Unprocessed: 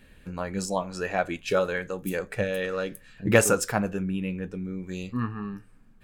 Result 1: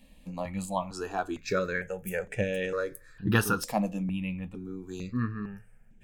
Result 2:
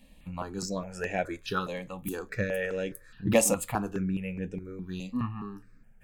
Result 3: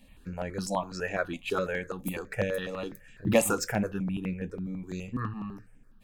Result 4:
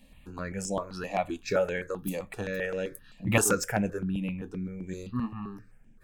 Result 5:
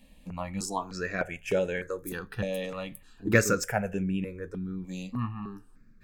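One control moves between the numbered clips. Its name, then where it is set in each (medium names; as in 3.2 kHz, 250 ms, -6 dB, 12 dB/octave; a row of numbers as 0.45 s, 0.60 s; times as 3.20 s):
stepped phaser, rate: 2.2 Hz, 4.8 Hz, 12 Hz, 7.7 Hz, 3.3 Hz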